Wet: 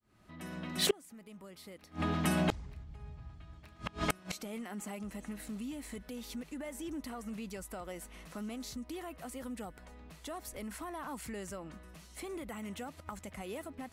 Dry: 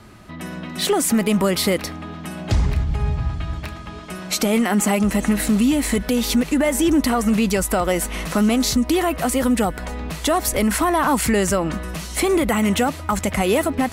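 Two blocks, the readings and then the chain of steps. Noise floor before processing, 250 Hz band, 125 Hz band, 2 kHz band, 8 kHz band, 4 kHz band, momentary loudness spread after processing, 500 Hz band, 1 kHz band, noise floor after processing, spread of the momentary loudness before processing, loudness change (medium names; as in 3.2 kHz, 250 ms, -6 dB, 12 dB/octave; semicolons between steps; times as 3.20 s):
-34 dBFS, -21.5 dB, -18.0 dB, -18.5 dB, -20.5 dB, -16.0 dB, 18 LU, -20.5 dB, -20.0 dB, -58 dBFS, 13 LU, -20.0 dB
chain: fade-in on the opening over 4.03 s; inverted gate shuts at -23 dBFS, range -30 dB; trim +6 dB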